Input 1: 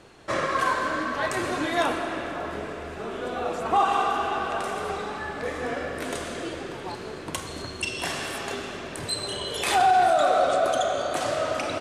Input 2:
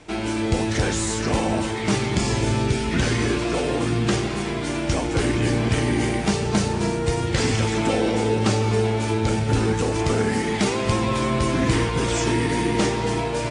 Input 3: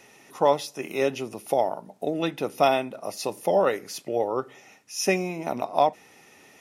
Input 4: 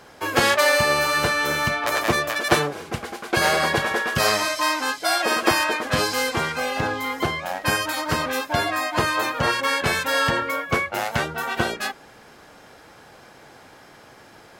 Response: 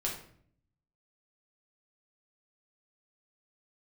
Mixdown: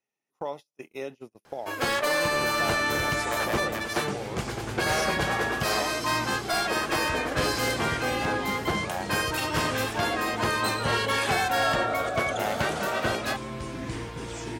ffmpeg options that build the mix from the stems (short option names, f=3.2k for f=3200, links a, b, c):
-filter_complex "[0:a]adelay=1550,volume=-4.5dB[a];[1:a]adelay=2200,volume=-14dB[b];[2:a]acompressor=threshold=-41dB:ratio=2,volume=0dB,asplit=2[c][d];[3:a]dynaudnorm=f=110:g=5:m=7dB,aeval=exprs='0.891*sin(PI/2*2*val(0)/0.891)':c=same,adelay=1450,volume=-18.5dB[e];[d]apad=whole_len=588810[f];[a][f]sidechaincompress=threshold=-40dB:ratio=8:attack=16:release=1210[g];[g][b][c]amix=inputs=3:normalize=0,agate=range=-36dB:threshold=-38dB:ratio=16:detection=peak,alimiter=limit=-21dB:level=0:latency=1:release=198,volume=0dB[h];[e][h]amix=inputs=2:normalize=0"